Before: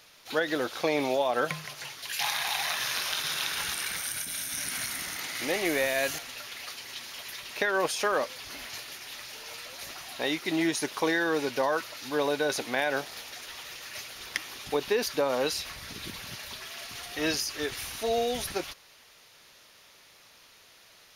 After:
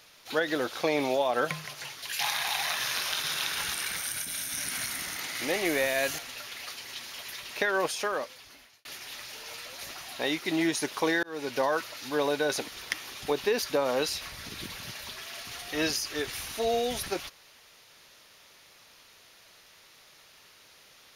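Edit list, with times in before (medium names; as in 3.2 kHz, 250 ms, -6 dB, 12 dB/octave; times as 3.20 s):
7.71–8.85 s: fade out
11.23–11.57 s: fade in
12.68–14.12 s: delete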